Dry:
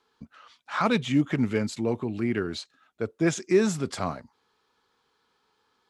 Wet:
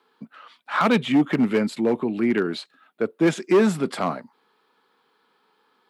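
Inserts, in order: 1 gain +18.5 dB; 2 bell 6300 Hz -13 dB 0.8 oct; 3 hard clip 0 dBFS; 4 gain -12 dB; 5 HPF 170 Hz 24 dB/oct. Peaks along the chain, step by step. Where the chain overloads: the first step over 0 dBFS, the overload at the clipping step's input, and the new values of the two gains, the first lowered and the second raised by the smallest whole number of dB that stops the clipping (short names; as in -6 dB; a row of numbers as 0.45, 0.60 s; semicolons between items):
+9.0, +9.0, 0.0, -12.0, -6.5 dBFS; step 1, 9.0 dB; step 1 +9.5 dB, step 4 -3 dB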